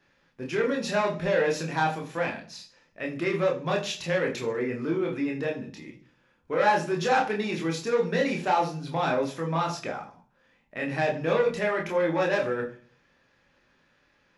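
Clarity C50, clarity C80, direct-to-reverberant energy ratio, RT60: 11.0 dB, 15.0 dB, 0.0 dB, 0.40 s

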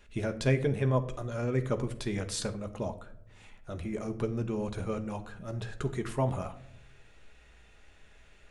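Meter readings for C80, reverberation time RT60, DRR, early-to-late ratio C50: 17.5 dB, 0.70 s, 6.5 dB, 14.0 dB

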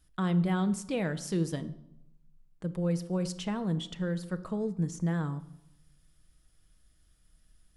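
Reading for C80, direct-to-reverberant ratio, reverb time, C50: 18.5 dB, 10.0 dB, 0.85 s, 16.0 dB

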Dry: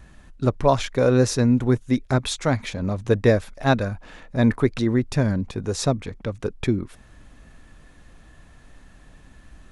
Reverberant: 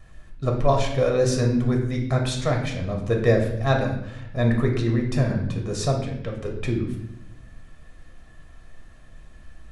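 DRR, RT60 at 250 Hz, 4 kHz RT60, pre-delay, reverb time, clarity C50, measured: 0.5 dB, 1.3 s, 0.65 s, 3 ms, 0.75 s, 5.5 dB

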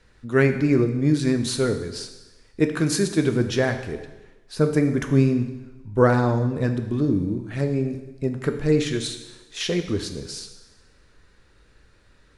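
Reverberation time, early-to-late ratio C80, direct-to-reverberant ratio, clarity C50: 1.1 s, 11.0 dB, 6.5 dB, 9.0 dB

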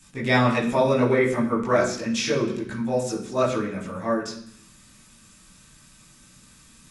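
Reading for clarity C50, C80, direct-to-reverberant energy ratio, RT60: 7.0 dB, 10.0 dB, -7.0 dB, 0.65 s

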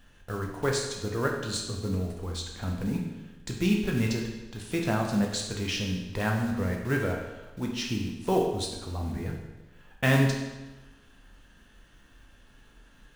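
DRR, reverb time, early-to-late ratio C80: 0.0 dB, 1.1 s, 6.0 dB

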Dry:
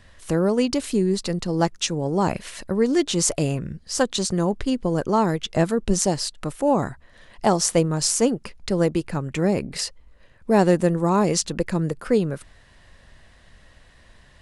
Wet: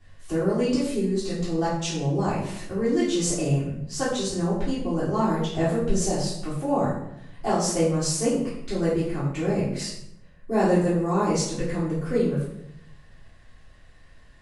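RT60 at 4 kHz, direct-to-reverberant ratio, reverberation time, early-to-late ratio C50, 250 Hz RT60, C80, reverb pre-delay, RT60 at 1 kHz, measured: 0.55 s, -13.0 dB, 0.80 s, 2.5 dB, 1.0 s, 5.5 dB, 3 ms, 0.75 s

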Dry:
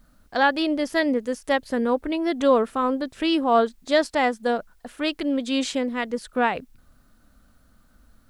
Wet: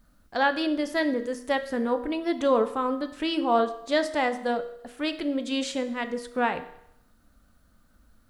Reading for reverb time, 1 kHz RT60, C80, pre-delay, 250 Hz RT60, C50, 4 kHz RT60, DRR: 0.75 s, 0.75 s, 15.5 dB, 7 ms, 0.75 s, 13.0 dB, 0.75 s, 8.5 dB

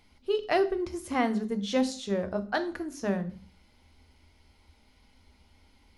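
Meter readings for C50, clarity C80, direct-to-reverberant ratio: 15.5 dB, 19.5 dB, 9.0 dB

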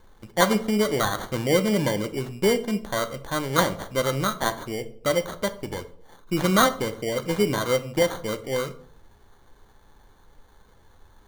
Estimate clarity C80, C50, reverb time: 19.5 dB, 15.5 dB, 0.60 s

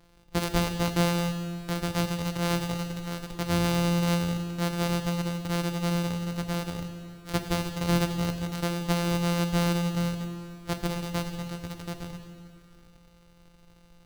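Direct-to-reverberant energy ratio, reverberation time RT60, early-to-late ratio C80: 6.5 dB, 2.4 s, 8.5 dB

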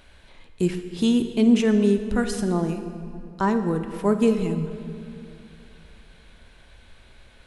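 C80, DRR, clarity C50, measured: 9.5 dB, 8.0 dB, 8.5 dB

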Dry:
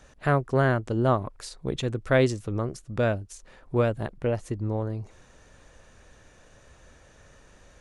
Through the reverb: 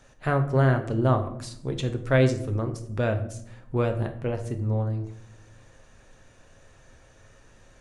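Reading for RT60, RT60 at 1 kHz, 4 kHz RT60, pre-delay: 0.75 s, 0.60 s, 0.45 s, 7 ms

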